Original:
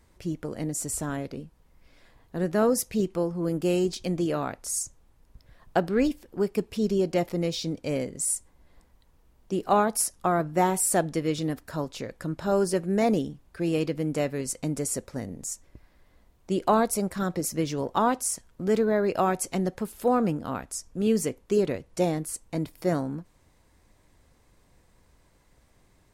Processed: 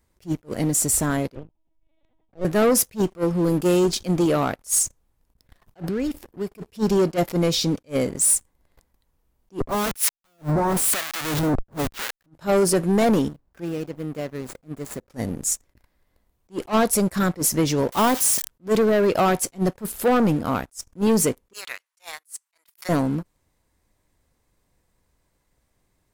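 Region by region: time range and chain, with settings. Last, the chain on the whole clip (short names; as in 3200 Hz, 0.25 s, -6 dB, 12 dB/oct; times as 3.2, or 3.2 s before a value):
1.35–2.45 high shelf 2200 Hz -10 dB + fixed phaser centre 620 Hz, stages 4 + LPC vocoder at 8 kHz pitch kept
5.82–6.58 bell 95 Hz +4.5 dB 2.8 oct + compressor 8:1, threshold -31 dBFS
9.6–12.26 Butterworth band-stop 760 Hz, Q 7.6 + Schmitt trigger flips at -38.5 dBFS + harmonic tremolo 1 Hz, depth 100%, crossover 1200 Hz
13.28–15.1 median filter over 15 samples + compressor 2:1, threshold -44 dBFS
17.92–18.48 switching spikes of -22.5 dBFS + high shelf 6600 Hz -11 dB
21.53–22.89 HPF 1100 Hz 24 dB/oct + transient shaper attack +2 dB, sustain -3 dB
whole clip: high shelf 11000 Hz +9.5 dB; sample leveller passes 3; attack slew limiter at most 380 dB/s; gain -2 dB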